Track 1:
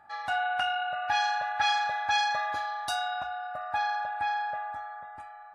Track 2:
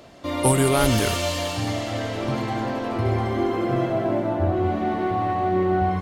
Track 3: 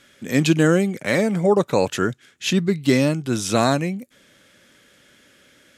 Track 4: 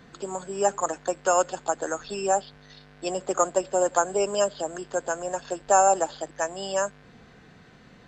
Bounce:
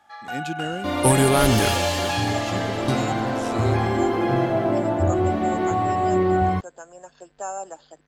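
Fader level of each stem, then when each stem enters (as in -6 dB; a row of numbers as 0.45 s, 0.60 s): -2.5 dB, +1.5 dB, -14.5 dB, -13.0 dB; 0.00 s, 0.60 s, 0.00 s, 1.70 s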